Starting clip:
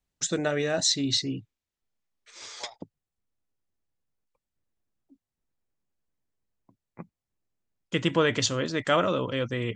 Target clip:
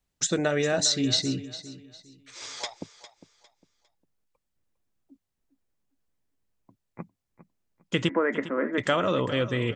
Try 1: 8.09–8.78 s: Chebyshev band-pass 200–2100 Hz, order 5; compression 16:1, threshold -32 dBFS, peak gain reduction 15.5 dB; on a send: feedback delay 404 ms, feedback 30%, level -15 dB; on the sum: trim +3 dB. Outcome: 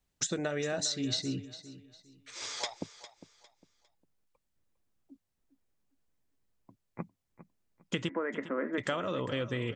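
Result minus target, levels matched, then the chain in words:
compression: peak gain reduction +9.5 dB
8.09–8.78 s: Chebyshev band-pass 200–2100 Hz, order 5; compression 16:1, threshold -22 dBFS, peak gain reduction 6 dB; on a send: feedback delay 404 ms, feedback 30%, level -15 dB; on the sum: trim +3 dB

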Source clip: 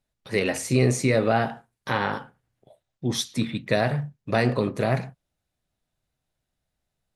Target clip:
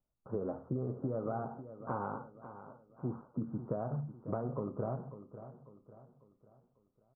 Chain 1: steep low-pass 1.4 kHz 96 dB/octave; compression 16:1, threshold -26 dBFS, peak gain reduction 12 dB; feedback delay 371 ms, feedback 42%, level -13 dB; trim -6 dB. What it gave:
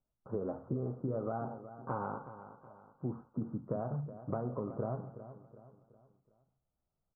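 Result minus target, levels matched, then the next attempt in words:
echo 176 ms early
steep low-pass 1.4 kHz 96 dB/octave; compression 16:1, threshold -26 dBFS, peak gain reduction 12 dB; feedback delay 547 ms, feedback 42%, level -13 dB; trim -6 dB

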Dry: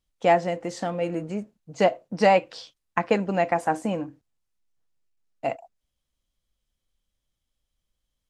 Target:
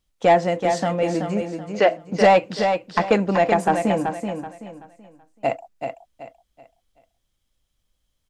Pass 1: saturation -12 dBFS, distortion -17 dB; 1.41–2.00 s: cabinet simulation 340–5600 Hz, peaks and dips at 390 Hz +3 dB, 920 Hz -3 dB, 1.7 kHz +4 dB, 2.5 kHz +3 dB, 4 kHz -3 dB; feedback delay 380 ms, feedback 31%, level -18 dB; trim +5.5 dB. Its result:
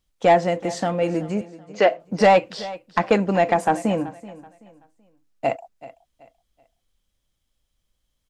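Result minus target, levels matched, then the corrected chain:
echo-to-direct -11.5 dB
saturation -12 dBFS, distortion -17 dB; 1.41–2.00 s: cabinet simulation 340–5600 Hz, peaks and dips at 390 Hz +3 dB, 920 Hz -3 dB, 1.7 kHz +4 dB, 2.5 kHz +3 dB, 4 kHz -3 dB; feedback delay 380 ms, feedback 31%, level -6.5 dB; trim +5.5 dB

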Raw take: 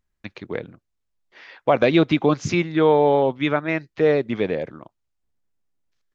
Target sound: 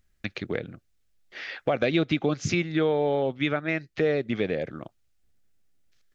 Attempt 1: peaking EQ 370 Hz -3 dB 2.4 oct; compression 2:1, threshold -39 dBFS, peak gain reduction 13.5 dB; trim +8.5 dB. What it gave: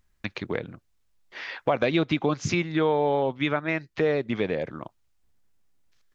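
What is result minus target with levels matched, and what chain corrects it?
1 kHz band +4.0 dB
peaking EQ 370 Hz -3 dB 2.4 oct; compression 2:1, threshold -39 dBFS, peak gain reduction 13.5 dB; peaking EQ 980 Hz -11.5 dB 0.39 oct; trim +8.5 dB

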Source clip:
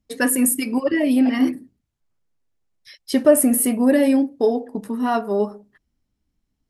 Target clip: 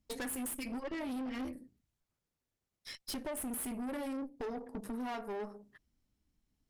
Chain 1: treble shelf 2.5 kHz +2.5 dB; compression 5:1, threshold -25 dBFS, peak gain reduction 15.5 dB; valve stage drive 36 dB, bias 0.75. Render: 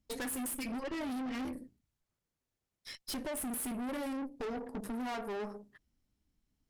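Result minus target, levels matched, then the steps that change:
compression: peak gain reduction -5 dB
change: compression 5:1, threshold -31 dBFS, peak gain reduction 20.5 dB

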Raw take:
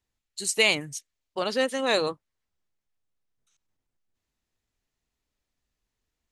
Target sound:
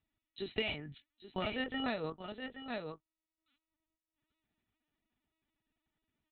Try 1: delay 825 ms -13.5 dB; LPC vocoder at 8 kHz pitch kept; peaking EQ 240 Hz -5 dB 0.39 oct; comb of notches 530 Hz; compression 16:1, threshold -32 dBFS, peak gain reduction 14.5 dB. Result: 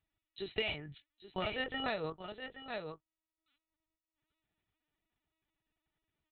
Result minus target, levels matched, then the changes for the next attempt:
250 Hz band -4.5 dB
change: peaking EQ 240 Hz +5.5 dB 0.39 oct

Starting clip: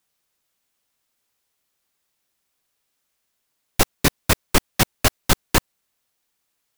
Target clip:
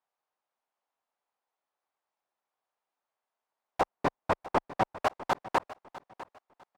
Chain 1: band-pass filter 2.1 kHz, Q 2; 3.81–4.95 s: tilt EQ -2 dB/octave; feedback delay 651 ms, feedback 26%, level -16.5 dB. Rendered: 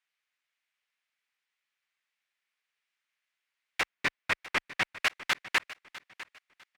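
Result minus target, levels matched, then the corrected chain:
1 kHz band -9.0 dB
band-pass filter 820 Hz, Q 2; 3.81–4.95 s: tilt EQ -2 dB/octave; feedback delay 651 ms, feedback 26%, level -16.5 dB

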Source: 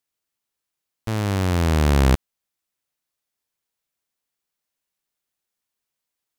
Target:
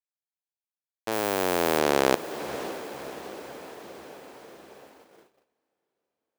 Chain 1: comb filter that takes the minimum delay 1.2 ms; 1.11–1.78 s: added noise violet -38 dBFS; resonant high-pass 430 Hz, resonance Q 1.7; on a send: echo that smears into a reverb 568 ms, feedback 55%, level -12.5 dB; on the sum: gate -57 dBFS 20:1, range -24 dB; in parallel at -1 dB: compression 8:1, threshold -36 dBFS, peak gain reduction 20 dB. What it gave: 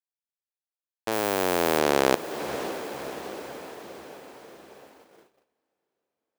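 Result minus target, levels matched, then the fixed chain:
compression: peak gain reduction -9 dB
comb filter that takes the minimum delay 1.2 ms; 1.11–1.78 s: added noise violet -38 dBFS; resonant high-pass 430 Hz, resonance Q 1.7; on a send: echo that smears into a reverb 568 ms, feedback 55%, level -12.5 dB; on the sum: gate -57 dBFS 20:1, range -24 dB; in parallel at -1 dB: compression 8:1, threshold -46.5 dBFS, peak gain reduction 29 dB

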